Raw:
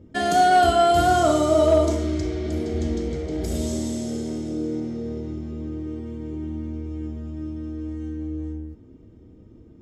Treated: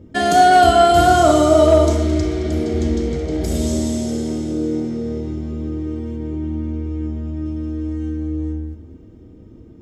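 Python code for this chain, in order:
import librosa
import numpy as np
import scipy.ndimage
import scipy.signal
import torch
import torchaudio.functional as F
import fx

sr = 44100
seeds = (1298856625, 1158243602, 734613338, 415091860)

y = fx.high_shelf(x, sr, hz=5200.0, db=-6.0, at=(6.16, 7.46))
y = fx.echo_split(y, sr, split_hz=700.0, low_ms=115, high_ms=219, feedback_pct=52, wet_db=-14)
y = y * librosa.db_to_amplitude(5.5)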